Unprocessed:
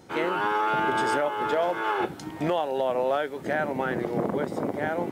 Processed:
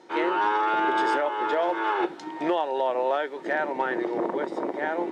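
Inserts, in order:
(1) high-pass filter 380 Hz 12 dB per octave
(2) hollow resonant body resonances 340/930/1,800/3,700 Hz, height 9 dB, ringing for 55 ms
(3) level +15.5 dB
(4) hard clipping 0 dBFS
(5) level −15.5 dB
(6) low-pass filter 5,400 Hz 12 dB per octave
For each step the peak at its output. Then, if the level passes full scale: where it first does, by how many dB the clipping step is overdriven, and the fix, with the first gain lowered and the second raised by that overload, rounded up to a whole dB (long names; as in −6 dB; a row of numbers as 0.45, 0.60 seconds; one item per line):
−14.5, −12.5, +3.0, 0.0, −15.5, −15.5 dBFS
step 3, 3.0 dB
step 3 +12.5 dB, step 5 −12.5 dB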